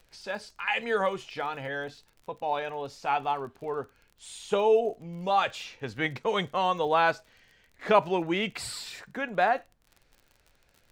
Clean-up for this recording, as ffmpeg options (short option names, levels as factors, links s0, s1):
-af "adeclick=t=4,agate=range=0.0891:threshold=0.00141"